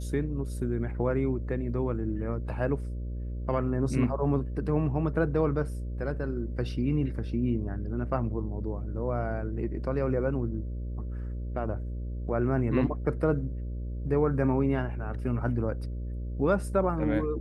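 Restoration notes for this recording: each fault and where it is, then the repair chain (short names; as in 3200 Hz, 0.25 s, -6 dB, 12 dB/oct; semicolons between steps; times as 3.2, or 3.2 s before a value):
buzz 60 Hz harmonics 10 -34 dBFS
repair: de-hum 60 Hz, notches 10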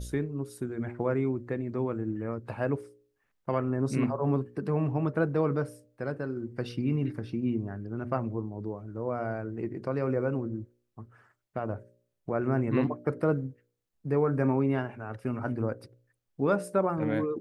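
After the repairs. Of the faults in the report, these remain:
none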